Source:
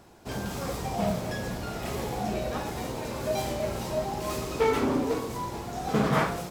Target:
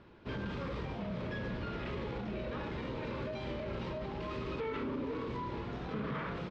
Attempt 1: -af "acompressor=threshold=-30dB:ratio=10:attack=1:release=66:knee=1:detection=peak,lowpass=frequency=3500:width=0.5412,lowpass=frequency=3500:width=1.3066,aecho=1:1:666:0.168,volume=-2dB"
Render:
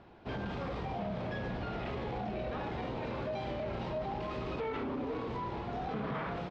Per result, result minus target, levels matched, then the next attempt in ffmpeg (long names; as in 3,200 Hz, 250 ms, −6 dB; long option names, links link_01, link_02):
echo 202 ms late; 1,000 Hz band +3.0 dB
-af "acompressor=threshold=-30dB:ratio=10:attack=1:release=66:knee=1:detection=peak,lowpass=frequency=3500:width=0.5412,lowpass=frequency=3500:width=1.3066,aecho=1:1:464:0.168,volume=-2dB"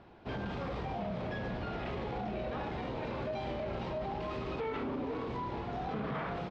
1,000 Hz band +3.0 dB
-af "acompressor=threshold=-30dB:ratio=10:attack=1:release=66:knee=1:detection=peak,lowpass=frequency=3500:width=0.5412,lowpass=frequency=3500:width=1.3066,equalizer=frequency=740:width=4.9:gain=-14.5,aecho=1:1:464:0.168,volume=-2dB"